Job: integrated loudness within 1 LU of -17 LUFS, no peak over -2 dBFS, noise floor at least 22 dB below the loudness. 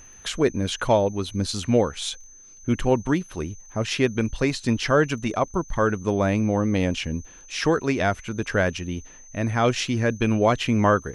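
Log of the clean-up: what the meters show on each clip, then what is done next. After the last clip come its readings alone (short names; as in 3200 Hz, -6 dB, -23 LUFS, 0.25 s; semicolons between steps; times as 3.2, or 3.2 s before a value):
ticks 22/s; steady tone 6200 Hz; tone level -46 dBFS; loudness -24.0 LUFS; peak -7.0 dBFS; loudness target -17.0 LUFS
-> de-click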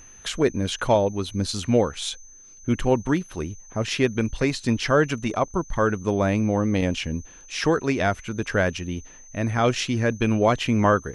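ticks 0/s; steady tone 6200 Hz; tone level -46 dBFS
-> notch 6200 Hz, Q 30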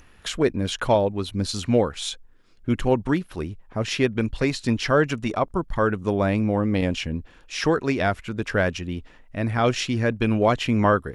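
steady tone none; loudness -24.0 LUFS; peak -7.0 dBFS; loudness target -17.0 LUFS
-> gain +7 dB; limiter -2 dBFS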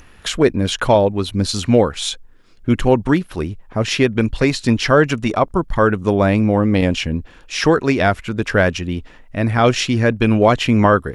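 loudness -17.0 LUFS; peak -2.0 dBFS; noise floor -45 dBFS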